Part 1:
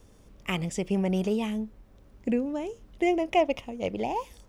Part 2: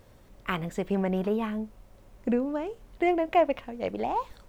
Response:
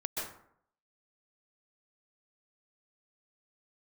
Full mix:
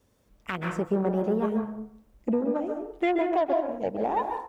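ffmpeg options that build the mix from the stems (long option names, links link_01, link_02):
-filter_complex "[0:a]volume=-10dB[link_01];[1:a]afwtdn=0.0282,highshelf=frequency=5000:gain=8,aeval=exprs='0.282*(cos(1*acos(clip(val(0)/0.282,-1,1)))-cos(1*PI/2))+0.01*(cos(7*acos(clip(val(0)/0.282,-1,1)))-cos(7*PI/2))':channel_layout=same,volume=-1,adelay=7.7,volume=-0.5dB,asplit=3[link_02][link_03][link_04];[link_03]volume=-3.5dB[link_05];[link_04]apad=whole_len=197977[link_06];[link_01][link_06]sidechaincompress=threshold=-33dB:ratio=8:attack=16:release=418[link_07];[2:a]atrim=start_sample=2205[link_08];[link_05][link_08]afir=irnorm=-1:irlink=0[link_09];[link_07][link_02][link_09]amix=inputs=3:normalize=0,highpass=frequency=90:poles=1,alimiter=limit=-16dB:level=0:latency=1:release=155"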